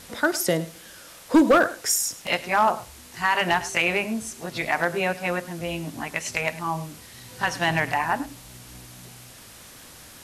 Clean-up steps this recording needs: clip repair -11 dBFS; noise reduction 24 dB, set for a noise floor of -46 dBFS; inverse comb 104 ms -17.5 dB

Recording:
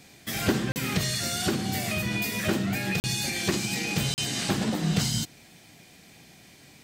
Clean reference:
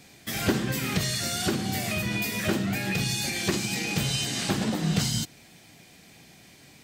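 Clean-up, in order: interpolate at 0.72/3.00/4.14 s, 39 ms

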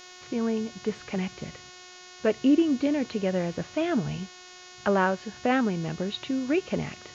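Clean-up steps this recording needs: de-hum 363.5 Hz, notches 19; expander -40 dBFS, range -21 dB

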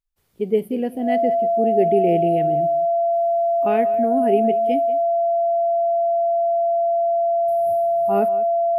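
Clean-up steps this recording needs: band-stop 680 Hz, Q 30; inverse comb 188 ms -17.5 dB

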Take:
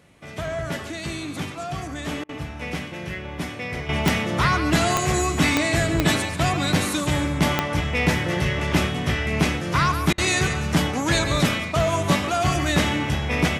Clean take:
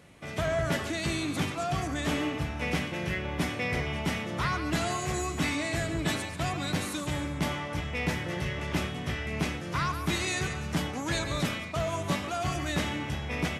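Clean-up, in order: de-click; interpolate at 2.24/10.13 s, 49 ms; gain correction -9.5 dB, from 3.89 s

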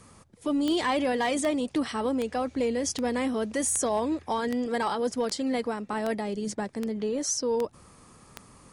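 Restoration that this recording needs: clip repair -19.5 dBFS; de-click

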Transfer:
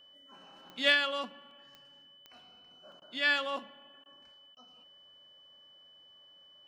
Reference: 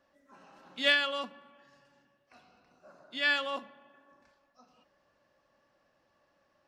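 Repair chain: de-click; band-stop 3 kHz, Q 30; interpolate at 1.51/2.92 s, 1.9 ms; interpolate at 3.00/4.04/4.55 s, 16 ms

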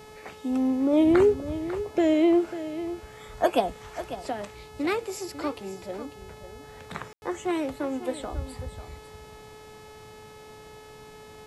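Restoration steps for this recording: de-hum 429.3 Hz, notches 31; room tone fill 7.13–7.22 s; inverse comb 546 ms -12.5 dB

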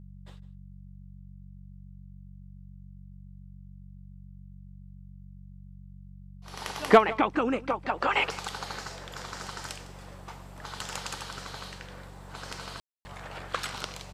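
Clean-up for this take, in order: de-hum 47.1 Hz, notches 4; room tone fill 12.80–13.05 s; inverse comb 155 ms -19.5 dB

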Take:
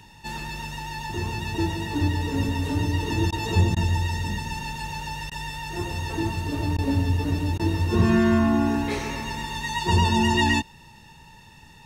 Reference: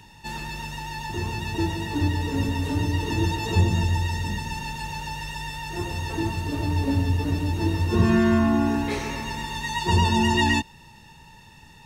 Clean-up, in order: clip repair -10 dBFS; interpolate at 3.31/3.75/5.30/6.77/7.58 s, 13 ms

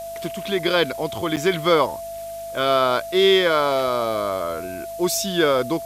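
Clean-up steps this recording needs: de-hum 50.8 Hz, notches 5; band-stop 670 Hz, Q 30; interpolate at 1.36 s, 8.6 ms; noise print and reduce 30 dB

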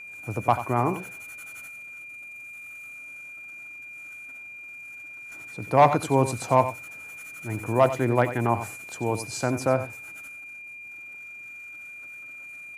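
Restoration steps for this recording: band-stop 2.4 kHz, Q 30; inverse comb 90 ms -12 dB

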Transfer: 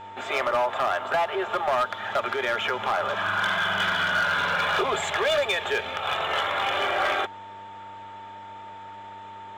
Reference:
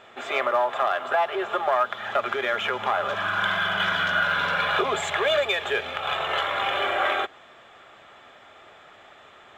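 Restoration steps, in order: clip repair -18.5 dBFS; de-hum 98.8 Hz, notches 6; band-stop 900 Hz, Q 30

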